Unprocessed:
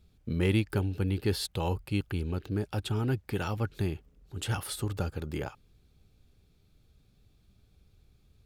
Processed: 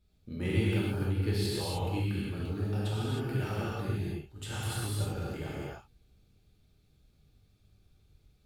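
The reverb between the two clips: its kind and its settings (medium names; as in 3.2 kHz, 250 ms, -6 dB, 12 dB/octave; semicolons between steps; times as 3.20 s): gated-style reverb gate 340 ms flat, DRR -8 dB; trim -10 dB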